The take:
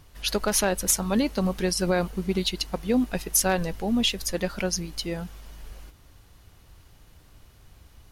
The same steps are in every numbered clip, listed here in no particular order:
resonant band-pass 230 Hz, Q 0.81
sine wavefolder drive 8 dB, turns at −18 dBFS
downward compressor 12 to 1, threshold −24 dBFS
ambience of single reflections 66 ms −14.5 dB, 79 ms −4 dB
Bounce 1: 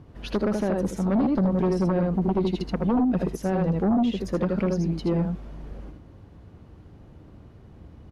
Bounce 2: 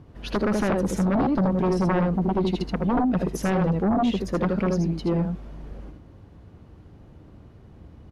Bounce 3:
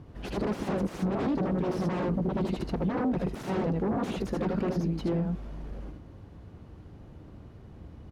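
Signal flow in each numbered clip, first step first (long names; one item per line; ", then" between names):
ambience of single reflections, then downward compressor, then resonant band-pass, then sine wavefolder
resonant band-pass, then downward compressor, then ambience of single reflections, then sine wavefolder
ambience of single reflections, then sine wavefolder, then resonant band-pass, then downward compressor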